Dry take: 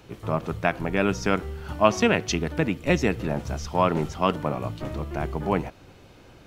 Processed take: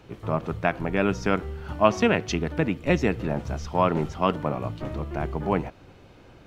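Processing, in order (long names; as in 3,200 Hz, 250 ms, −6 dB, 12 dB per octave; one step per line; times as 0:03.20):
high-shelf EQ 4,800 Hz −9 dB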